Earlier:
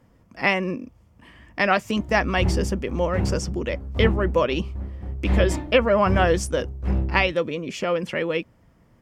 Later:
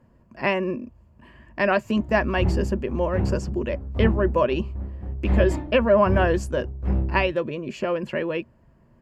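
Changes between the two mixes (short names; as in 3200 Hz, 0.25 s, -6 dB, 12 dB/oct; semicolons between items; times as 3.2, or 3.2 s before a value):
speech: add ripple EQ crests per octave 1.4, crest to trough 7 dB; master: add high shelf 2500 Hz -11 dB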